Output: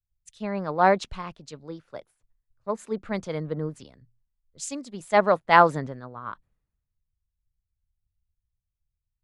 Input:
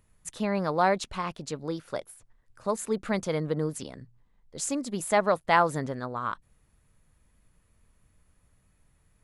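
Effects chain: distance through air 75 m; three bands expanded up and down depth 100%; trim -1.5 dB

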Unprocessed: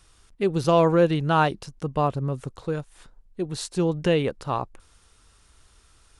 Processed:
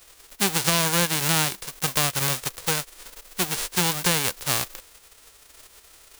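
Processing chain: formants flattened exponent 0.1; compression 4:1, threshold -23 dBFS, peak gain reduction 9.5 dB; trim +4.5 dB

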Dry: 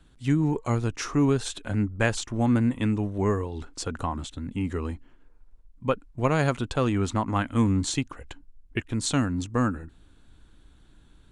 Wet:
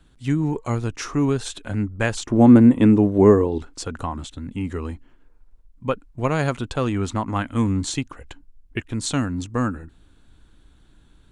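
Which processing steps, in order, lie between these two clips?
2.26–3.58 s: peaking EQ 350 Hz +12.5 dB 2.7 oct; trim +1.5 dB

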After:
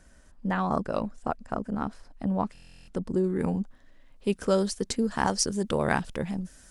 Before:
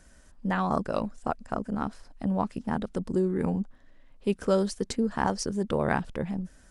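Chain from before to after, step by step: treble shelf 3.1 kHz -3 dB, from 3.24 s +5 dB, from 4.96 s +10.5 dB; buffer glitch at 2.53 s, samples 1024, times 14

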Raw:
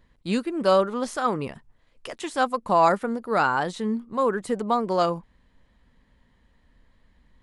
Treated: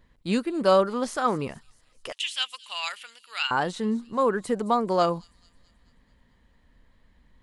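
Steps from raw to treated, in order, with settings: 2.12–3.51 s: resonant high-pass 2.9 kHz, resonance Q 6; on a send: feedback echo behind a high-pass 217 ms, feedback 54%, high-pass 5.1 kHz, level -14.5 dB

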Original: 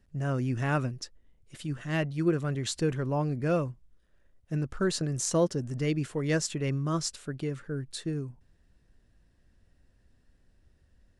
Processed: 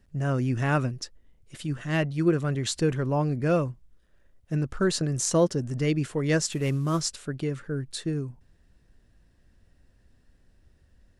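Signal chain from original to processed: 6.52–7.01 s: CVSD coder 64 kbps; trim +3.5 dB

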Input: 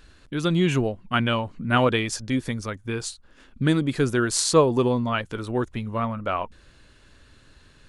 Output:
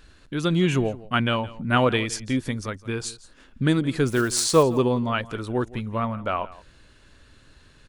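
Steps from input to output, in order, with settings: 4.07–4.64 s: block-companded coder 5-bit; on a send: delay 168 ms -19 dB

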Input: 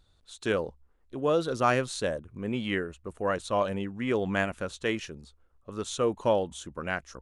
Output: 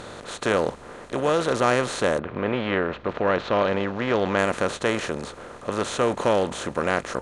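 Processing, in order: spectral levelling over time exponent 0.4; 2.18–4.37 s: low-pass 3.2 kHz -> 5.5 kHz 24 dB/octave

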